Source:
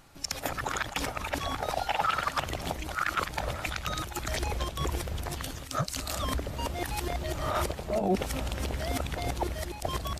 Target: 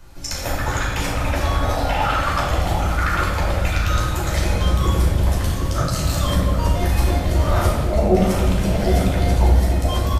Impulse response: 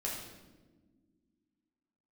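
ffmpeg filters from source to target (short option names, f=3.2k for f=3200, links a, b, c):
-filter_complex "[0:a]acrossover=split=100|1700|7000[a][b][c][d];[a]aeval=exprs='0.0531*sin(PI/2*2.24*val(0)/0.0531)':c=same[e];[b]aecho=1:1:762:0.501[f];[e][f][c][d]amix=inputs=4:normalize=0[g];[1:a]atrim=start_sample=2205,asetrate=37044,aresample=44100[h];[g][h]afir=irnorm=-1:irlink=0,volume=4.5dB"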